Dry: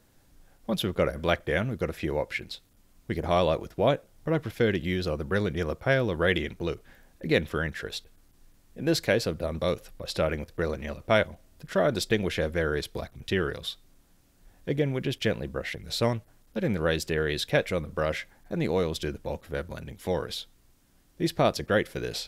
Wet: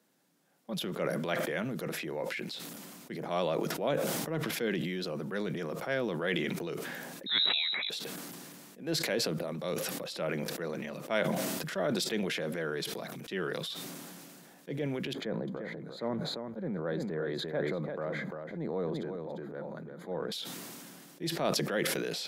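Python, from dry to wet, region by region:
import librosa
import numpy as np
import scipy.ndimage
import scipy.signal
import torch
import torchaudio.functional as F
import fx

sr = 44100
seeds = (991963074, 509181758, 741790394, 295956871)

y = fx.chain(x, sr, fx.low_shelf(hz=96.0, db=10.5),
    fx.freq_invert(carrier_hz=3900),
    fx.sustainer(db_per_s=26.0), at=(7.26, 7.9))
y = fx.chain(y, sr, fx.moving_average(points=16),
    fx.echo_single(ms=346, db=-8.0), at=(15.13, 20.32))
y = scipy.signal.sosfilt(scipy.signal.butter(8, 150.0, 'highpass', fs=sr, output='sos'), y)
y = fx.transient(y, sr, attack_db=-4, sustain_db=4)
y = fx.sustainer(y, sr, db_per_s=21.0)
y = y * librosa.db_to_amplitude(-7.0)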